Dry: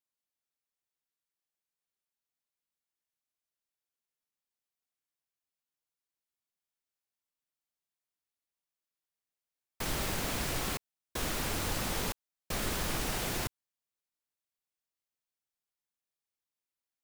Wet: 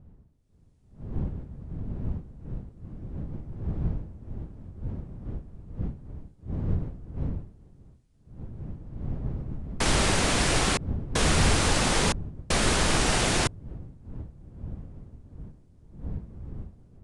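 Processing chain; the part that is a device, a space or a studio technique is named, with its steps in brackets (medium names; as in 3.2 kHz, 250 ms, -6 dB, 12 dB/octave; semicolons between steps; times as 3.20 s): smartphone video outdoors (wind noise 120 Hz -45 dBFS; level rider gain up to 12.5 dB; trim -1.5 dB; AAC 64 kbps 22.05 kHz)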